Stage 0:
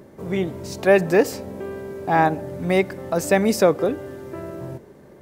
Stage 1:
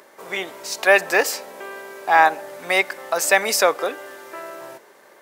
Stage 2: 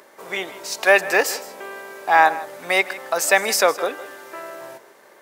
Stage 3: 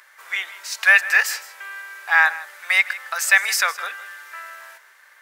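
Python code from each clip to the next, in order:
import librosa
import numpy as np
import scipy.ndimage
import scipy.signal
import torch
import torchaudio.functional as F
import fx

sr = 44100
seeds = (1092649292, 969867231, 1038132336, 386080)

y1 = scipy.signal.sosfilt(scipy.signal.butter(2, 960.0, 'highpass', fs=sr, output='sos'), x)
y1 = y1 * 10.0 ** (8.5 / 20.0)
y2 = y1 + 10.0 ** (-17.0 / 20.0) * np.pad(y1, (int(159 * sr / 1000.0), 0))[:len(y1)]
y3 = fx.highpass_res(y2, sr, hz=1600.0, q=2.0)
y3 = y3 * 10.0 ** (-1.5 / 20.0)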